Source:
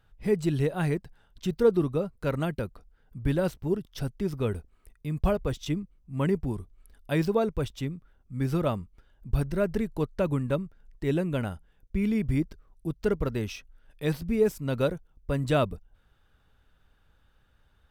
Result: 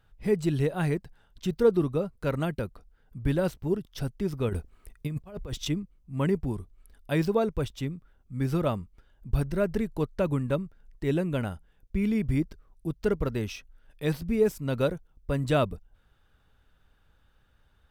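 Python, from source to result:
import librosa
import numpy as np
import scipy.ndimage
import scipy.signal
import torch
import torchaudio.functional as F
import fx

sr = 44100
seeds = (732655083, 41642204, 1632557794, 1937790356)

y = fx.over_compress(x, sr, threshold_db=-32.0, ratio=-0.5, at=(4.49, 5.68))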